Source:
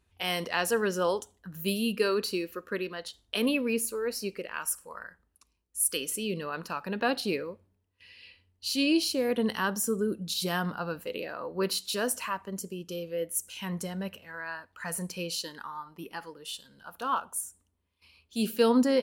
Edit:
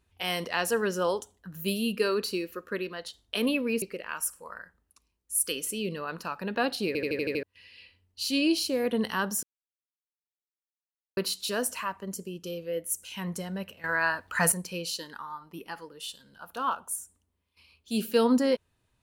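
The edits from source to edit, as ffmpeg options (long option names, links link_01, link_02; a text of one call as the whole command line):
ffmpeg -i in.wav -filter_complex "[0:a]asplit=13[link_01][link_02][link_03][link_04][link_05][link_06][link_07][link_08][link_09][link_10][link_11][link_12][link_13];[link_01]atrim=end=3.822[link_14];[link_02]atrim=start=4.268:end=7.402[link_15];[link_03]atrim=start=7.318:end=7.402[link_16];[link_04]atrim=start=7.318:end=7.402[link_17];[link_05]atrim=start=7.318:end=7.402[link_18];[link_06]atrim=start=7.318:end=7.402[link_19];[link_07]atrim=start=7.318:end=7.402[link_20];[link_08]atrim=start=7.318:end=7.402[link_21];[link_09]atrim=start=7.878:end=9.88,asetpts=PTS-STARTPTS,afade=type=out:start_time=1.998:duration=0.004:curve=hsin[link_22];[link_10]atrim=start=9.88:end=11.62,asetpts=PTS-STARTPTS,volume=0[link_23];[link_11]atrim=start=11.62:end=14.292,asetpts=PTS-STARTPTS,afade=type=in:duration=0.004:curve=hsin[link_24];[link_12]atrim=start=14.288:end=14.972,asetpts=PTS-STARTPTS,volume=11.5dB[link_25];[link_13]atrim=start=14.968[link_26];[link_14][link_15]acrossfade=duration=0.004:curve1=hsin:curve2=hsin[link_27];[link_27][link_16]acrossfade=duration=0.004:curve1=hsin:curve2=hsin[link_28];[link_28][link_17]acrossfade=duration=0.004:curve1=hsin:curve2=hsin[link_29];[link_29][link_18]acrossfade=duration=0.004:curve1=hsin:curve2=hsin[link_30];[link_30][link_19]acrossfade=duration=0.004:curve1=hsin:curve2=hsin[link_31];[link_31][link_20]acrossfade=duration=0.004:curve1=hsin:curve2=hsin[link_32];[link_32][link_21]acrossfade=duration=0.004:curve1=hsin:curve2=hsin[link_33];[link_22][link_23][link_24]concat=n=3:v=0:a=1[link_34];[link_33][link_34]acrossfade=duration=0.004:curve1=hsin:curve2=hsin[link_35];[link_35][link_25]acrossfade=duration=0.004:curve1=hsin:curve2=hsin[link_36];[link_36][link_26]acrossfade=duration=0.004:curve1=hsin:curve2=hsin" out.wav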